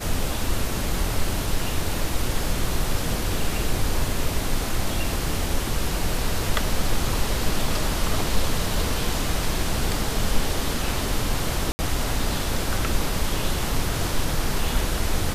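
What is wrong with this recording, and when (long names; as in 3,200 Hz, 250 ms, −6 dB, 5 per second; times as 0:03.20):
0:11.72–0:11.79: drop-out 70 ms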